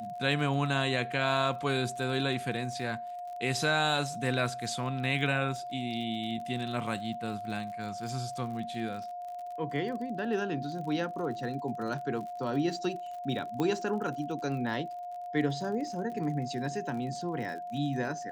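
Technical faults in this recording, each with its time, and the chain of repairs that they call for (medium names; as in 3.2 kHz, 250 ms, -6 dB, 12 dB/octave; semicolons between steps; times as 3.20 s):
crackle 49 per s -40 dBFS
whine 710 Hz -37 dBFS
13.60 s: pop -19 dBFS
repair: de-click; band-stop 710 Hz, Q 30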